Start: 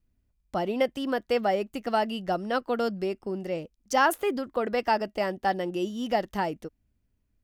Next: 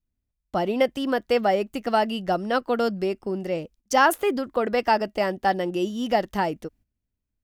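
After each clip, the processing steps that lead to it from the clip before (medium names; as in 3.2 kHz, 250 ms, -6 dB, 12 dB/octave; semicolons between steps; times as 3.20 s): gate -55 dBFS, range -13 dB; trim +4 dB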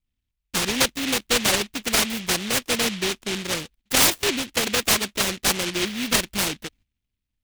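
delay time shaken by noise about 2.7 kHz, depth 0.42 ms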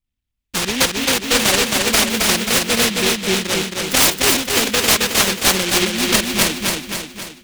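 level rider gain up to 6.5 dB; on a send: feedback delay 268 ms, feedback 53%, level -3 dB; on the sum: trim -1 dB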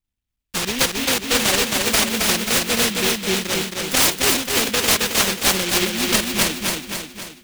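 block-companded coder 3-bit; trim -3 dB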